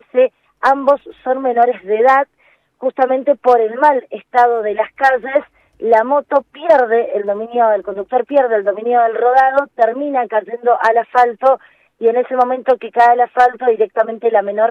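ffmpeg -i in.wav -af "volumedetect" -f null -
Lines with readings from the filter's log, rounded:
mean_volume: -14.3 dB
max_volume: -1.5 dB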